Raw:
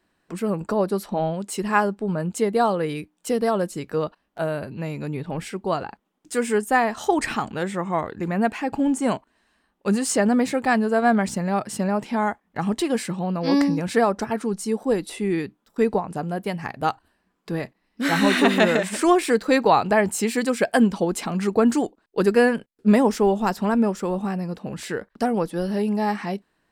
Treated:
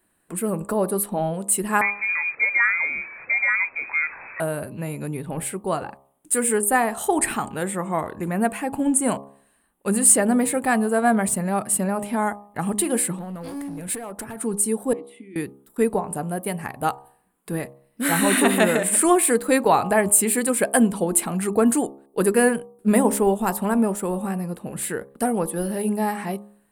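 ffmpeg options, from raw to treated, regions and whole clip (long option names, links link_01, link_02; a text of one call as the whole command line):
ffmpeg -i in.wav -filter_complex "[0:a]asettb=1/sr,asplit=3[link_01][link_02][link_03];[link_01]atrim=end=1.814[link_04];[link_02]atrim=start=1.81:end=4.4,asetpts=PTS-STARTPTS,afade=type=in:duration=0.004:curve=qsin,afade=type=out:start_time=2.586:duration=0.004:curve=qsin,aeval=exprs='val(0)+0.5*0.0251*sgn(val(0))':channel_layout=same,lowpass=frequency=2200:width_type=q:width=0.5098,lowpass=frequency=2200:width_type=q:width=0.6013,lowpass=frequency=2200:width_type=q:width=0.9,lowpass=frequency=2200:width_type=q:width=2.563,afreqshift=-2600[link_05];[link_03]atrim=start=4.396[link_06];[link_04][link_05]acrossfade=duration=0.004:curve1=hsin:curve2=qsin[link_07];[link_07][link_06]acrossfade=duration=0.004:curve1=qsin:curve2=hsin,asettb=1/sr,asplit=3[link_08][link_09][link_10];[link_08]atrim=end=13.174[link_11];[link_09]atrim=start=13.17:end=14.41,asetpts=PTS-STARTPTS,afade=type=in:duration=0.004:curve=qsin,afade=type=out:start_time=1.236:duration=0.004:curve=qsin,acompressor=threshold=-27dB:ratio=16:attack=3.2:release=140:knee=1:detection=peak,asoftclip=type=hard:threshold=-28.5dB[link_12];[link_10]atrim=start=14.406[link_13];[link_11][link_12]acrossfade=duration=0.004:curve1=hsin:curve2=qsin[link_14];[link_14][link_13]acrossfade=duration=0.004:curve1=qsin:curve2=hsin,asettb=1/sr,asplit=3[link_15][link_16][link_17];[link_15]atrim=end=14.934[link_18];[link_16]atrim=start=14.93:end=15.36,asetpts=PTS-STARTPTS,afade=type=in:duration=0.004:curve=qsin,afade=type=out:start_time=0.426:duration=0.004:curve=qsin,acompressor=threshold=-24dB:ratio=6:attack=3.2:release=140:knee=1:detection=peak,asplit=3[link_19][link_20][link_21];[link_19]bandpass=frequency=270:width_type=q:width=8,volume=0dB[link_22];[link_20]bandpass=frequency=2290:width_type=q:width=8,volume=-6dB[link_23];[link_21]bandpass=frequency=3010:width_type=q:width=8,volume=-9dB[link_24];[link_22][link_23][link_24]amix=inputs=3:normalize=0[link_25];[link_17]atrim=start=15.356[link_26];[link_18][link_25]acrossfade=duration=0.004:curve1=hsin:curve2=qsin[link_27];[link_27][link_26]acrossfade=duration=0.004:curve1=qsin:curve2=hsin,highshelf=frequency=7400:width_type=q:width=3:gain=11.5,bandreject=frequency=68.29:width_type=h:width=4,bandreject=frequency=136.58:width_type=h:width=4,bandreject=frequency=204.87:width_type=h:width=4,bandreject=frequency=273.16:width_type=h:width=4,bandreject=frequency=341.45:width_type=h:width=4,bandreject=frequency=409.74:width_type=h:width=4,bandreject=frequency=478.03:width_type=h:width=4,bandreject=frequency=546.32:width_type=h:width=4,bandreject=frequency=614.61:width_type=h:width=4,bandreject=frequency=682.9:width_type=h:width=4,bandreject=frequency=751.19:width_type=h:width=4,bandreject=frequency=819.48:width_type=h:width=4,bandreject=frequency=887.77:width_type=h:width=4,bandreject=frequency=956.06:width_type=h:width=4,bandreject=frequency=1024.35:width_type=h:width=4,bandreject=frequency=1092.64:width_type=h:width=4,bandreject=frequency=1160.93:width_type=h:width=4,bandreject=frequency=1229.22:width_type=h:width=4" out.wav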